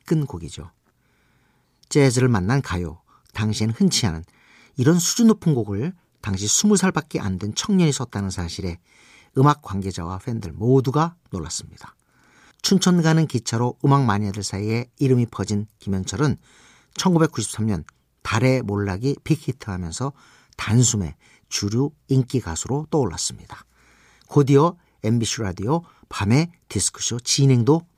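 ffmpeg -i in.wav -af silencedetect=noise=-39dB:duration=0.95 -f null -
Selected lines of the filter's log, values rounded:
silence_start: 0.67
silence_end: 1.83 | silence_duration: 1.16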